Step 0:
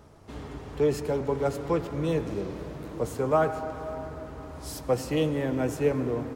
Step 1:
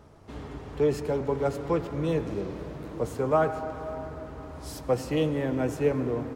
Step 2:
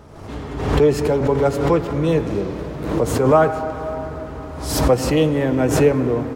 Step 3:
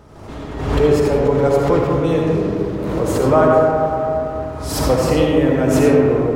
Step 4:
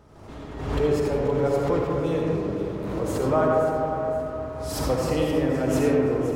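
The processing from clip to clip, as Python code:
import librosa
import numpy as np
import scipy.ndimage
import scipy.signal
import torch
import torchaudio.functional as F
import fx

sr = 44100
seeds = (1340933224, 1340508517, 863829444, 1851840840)

y1 = fx.high_shelf(x, sr, hz=5400.0, db=-5.0)
y2 = fx.pre_swell(y1, sr, db_per_s=57.0)
y2 = y2 * 10.0 ** (9.0 / 20.0)
y3 = fx.rev_freeverb(y2, sr, rt60_s=2.0, hf_ratio=0.35, predelay_ms=30, drr_db=-1.0)
y3 = y3 * 10.0 ** (-1.5 / 20.0)
y4 = fx.echo_feedback(y3, sr, ms=521, feedback_pct=39, wet_db=-12.5)
y4 = y4 * 10.0 ** (-8.5 / 20.0)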